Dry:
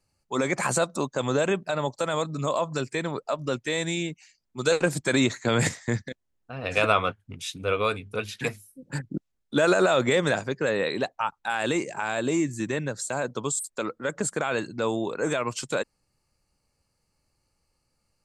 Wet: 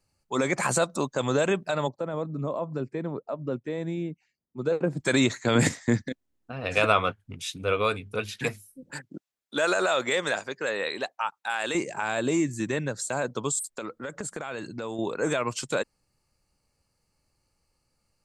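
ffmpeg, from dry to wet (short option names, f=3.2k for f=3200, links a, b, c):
-filter_complex "[0:a]asplit=3[a][b][c];[a]afade=t=out:st=1.87:d=0.02[d];[b]bandpass=f=230:t=q:w=0.56,afade=t=in:st=1.87:d=0.02,afade=t=out:st=4.99:d=0.02[e];[c]afade=t=in:st=4.99:d=0.02[f];[d][e][f]amix=inputs=3:normalize=0,asettb=1/sr,asplit=3[g][h][i];[g]atrim=end=5.554[j];[h]atrim=start=5.55:end=6.52,asetpts=PTS-STARTPTS,afade=t=in:d=0.004:c=qsin,afade=t=out:st=0.966:d=0.004:c=qsin,equalizer=f=270:t=o:w=0.77:g=8[k];[i]atrim=start=6.516[l];[j][k]acrossfade=d=0.004:c1=hsin:c2=qsin[m];[m][l]acrossfade=d=0.004:c1=qsin:c2=hsin,asettb=1/sr,asplit=3[n][o][p];[n]atrim=end=8.904[q];[o]atrim=start=8.9:end=11.75,asetpts=PTS-STARTPTS,afade=t=in:d=0.004:c=qsin,afade=t=out:st=2.846:d=0.004:c=qsin,highpass=f=720:p=1[r];[p]atrim=start=11.746[s];[q][r]acrossfade=d=0.004:c1=hsin:c2=qsin[t];[t][s]acrossfade=d=0.004:c1=qsin:c2=hsin,asettb=1/sr,asplit=3[u][v][w];[u]atrim=end=13.774[x];[v]atrim=start=13.77:end=14.99,asetpts=PTS-STARTPTS,afade=t=in:d=0.004:c=qsin,afade=t=out:st=1.216:d=0.004:c=qsin,acompressor=threshold=-30dB:ratio=6:attack=3.2:release=140:knee=1:detection=peak[y];[w]atrim=start=14.986[z];[x][y]acrossfade=d=0.004:c1=hsin:c2=qsin[aa];[aa][z]acrossfade=d=0.004:c1=qsin:c2=hsin"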